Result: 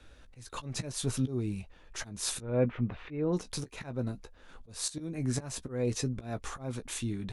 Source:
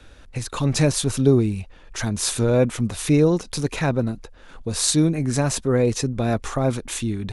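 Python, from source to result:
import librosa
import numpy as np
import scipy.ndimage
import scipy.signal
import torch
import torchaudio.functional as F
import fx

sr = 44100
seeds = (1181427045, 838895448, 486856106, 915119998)

y = fx.lowpass(x, sr, hz=2600.0, slope=24, at=(2.41, 3.32), fade=0.02)
y = fx.auto_swell(y, sr, attack_ms=262.0)
y = fx.doubler(y, sr, ms=16.0, db=-10.5)
y = y * 10.0 ** (-9.0 / 20.0)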